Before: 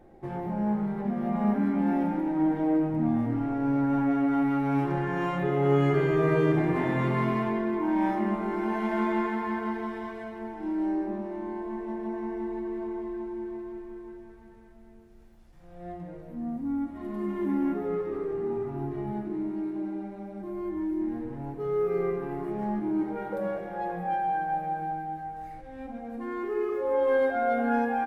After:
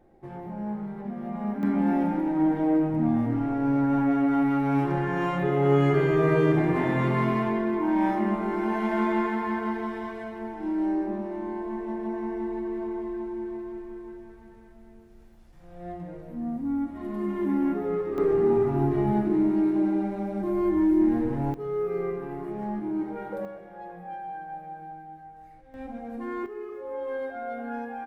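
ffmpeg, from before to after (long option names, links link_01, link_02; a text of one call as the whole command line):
ffmpeg -i in.wav -af "asetnsamples=nb_out_samples=441:pad=0,asendcmd='1.63 volume volume 2dB;18.18 volume volume 9dB;21.54 volume volume -1.5dB;23.45 volume volume -9dB;25.74 volume volume 1dB;26.46 volume volume -8.5dB',volume=-5dB" out.wav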